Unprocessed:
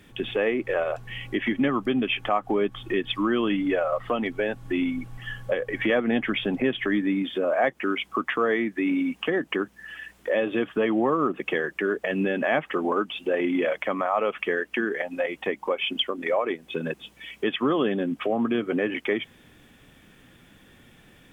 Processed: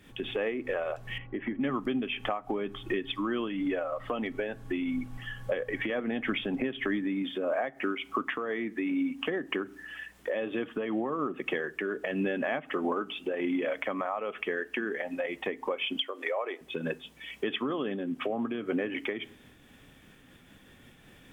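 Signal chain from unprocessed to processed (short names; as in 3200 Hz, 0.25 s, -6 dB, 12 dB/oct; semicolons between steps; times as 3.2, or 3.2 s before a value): 16–16.61 HPF 400 Hz 24 dB/oct; reverb RT60 0.50 s, pre-delay 4 ms, DRR 18 dB; compressor, threshold -25 dBFS, peak gain reduction 8 dB; 1.18–1.61 LPF 1500 Hz 12 dB/oct; noise-modulated level, depth 55%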